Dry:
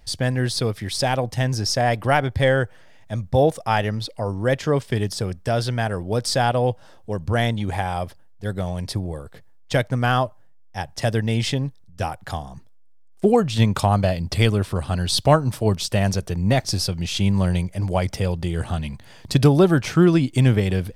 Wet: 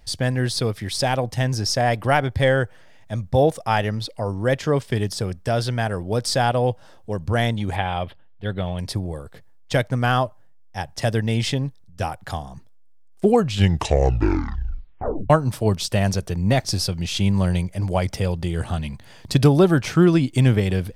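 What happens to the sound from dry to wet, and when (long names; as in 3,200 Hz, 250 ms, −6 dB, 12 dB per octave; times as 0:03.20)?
0:07.76–0:08.79: high shelf with overshoot 4,500 Hz −12 dB, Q 3
0:13.38: tape stop 1.92 s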